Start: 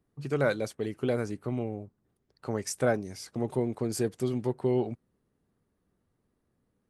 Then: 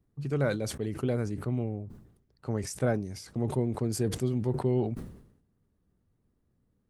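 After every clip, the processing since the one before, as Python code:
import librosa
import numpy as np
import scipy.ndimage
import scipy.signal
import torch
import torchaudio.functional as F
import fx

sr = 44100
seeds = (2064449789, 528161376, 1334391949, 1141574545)

y = fx.low_shelf(x, sr, hz=210.0, db=12.0)
y = fx.sustainer(y, sr, db_per_s=78.0)
y = y * 10.0 ** (-5.0 / 20.0)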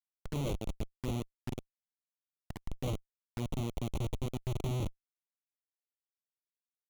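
y = fx.schmitt(x, sr, flips_db=-27.0)
y = fx.env_flanger(y, sr, rest_ms=3.2, full_db=-33.5)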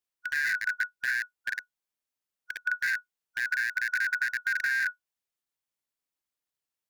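y = fx.band_shuffle(x, sr, order='4123')
y = y * 10.0 ** (5.5 / 20.0)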